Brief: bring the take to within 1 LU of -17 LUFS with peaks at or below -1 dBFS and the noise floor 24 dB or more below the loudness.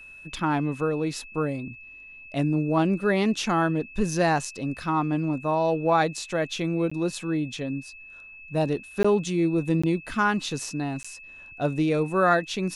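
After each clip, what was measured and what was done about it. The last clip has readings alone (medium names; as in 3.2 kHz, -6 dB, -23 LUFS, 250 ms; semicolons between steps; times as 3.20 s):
dropouts 4; longest dropout 15 ms; steady tone 2.6 kHz; tone level -43 dBFS; loudness -25.5 LUFS; peak level -8.0 dBFS; loudness target -17.0 LUFS
-> interpolate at 6.90/9.03/9.82/11.03 s, 15 ms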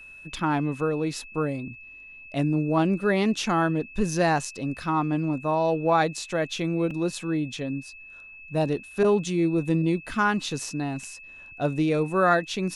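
dropouts 0; steady tone 2.6 kHz; tone level -43 dBFS
-> band-stop 2.6 kHz, Q 30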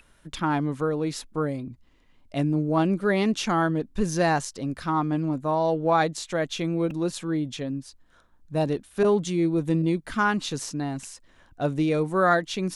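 steady tone not found; loudness -25.5 LUFS; peak level -7.5 dBFS; loudness target -17.0 LUFS
-> trim +8.5 dB; peak limiter -1 dBFS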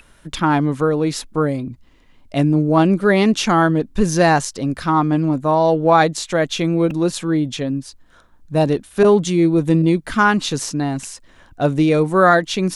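loudness -17.5 LUFS; peak level -1.0 dBFS; noise floor -51 dBFS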